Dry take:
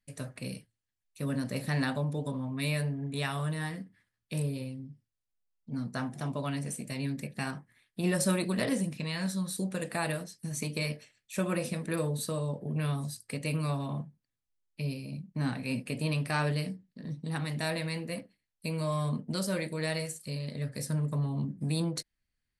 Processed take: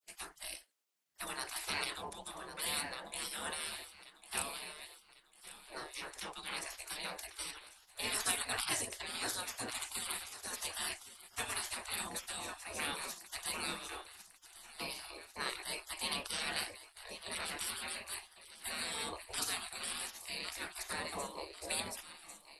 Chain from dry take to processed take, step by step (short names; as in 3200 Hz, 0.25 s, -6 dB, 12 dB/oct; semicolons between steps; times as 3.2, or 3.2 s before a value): frequency shift -19 Hz; thinning echo 1.098 s, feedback 56%, high-pass 160 Hz, level -14 dB; spectral gate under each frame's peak -25 dB weak; gain +7.5 dB